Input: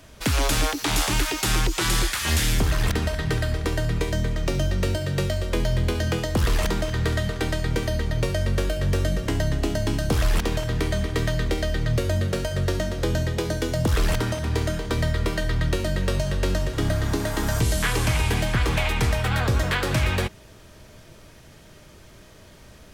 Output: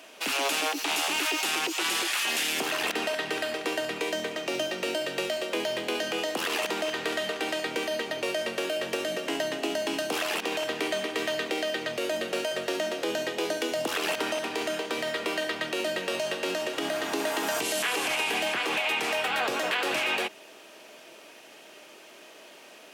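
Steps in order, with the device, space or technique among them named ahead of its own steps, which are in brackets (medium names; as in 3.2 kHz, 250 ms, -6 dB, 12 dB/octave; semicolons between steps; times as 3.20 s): laptop speaker (high-pass 290 Hz 24 dB/octave; peaking EQ 750 Hz +5 dB 0.49 oct; peaking EQ 2.7 kHz +9 dB 0.45 oct; peak limiter -18.5 dBFS, peak gain reduction 10 dB)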